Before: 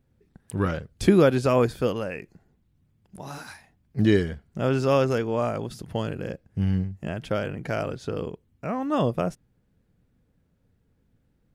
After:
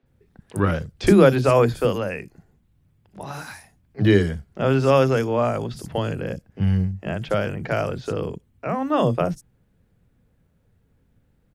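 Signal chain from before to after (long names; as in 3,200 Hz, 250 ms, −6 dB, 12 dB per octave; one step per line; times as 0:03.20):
three-band delay without the direct sound mids, lows, highs 30/60 ms, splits 270/5,200 Hz
level +5 dB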